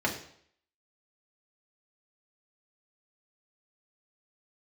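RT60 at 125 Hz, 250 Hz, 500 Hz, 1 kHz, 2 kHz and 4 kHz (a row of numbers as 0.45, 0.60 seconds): 0.60, 0.60, 0.65, 0.60, 0.60, 0.60 seconds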